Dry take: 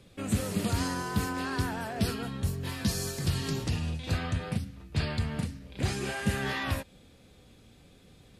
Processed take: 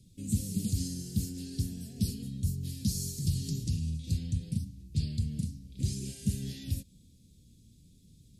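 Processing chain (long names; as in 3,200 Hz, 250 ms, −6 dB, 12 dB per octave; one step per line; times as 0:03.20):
Chebyshev band-stop filter 190–5,900 Hz, order 2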